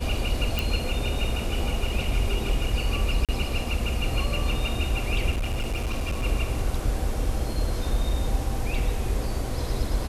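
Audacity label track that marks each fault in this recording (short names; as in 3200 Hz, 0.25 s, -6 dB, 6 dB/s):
0.590000	0.590000	pop
3.250000	3.290000	gap 37 ms
5.300000	6.250000	clipped -23 dBFS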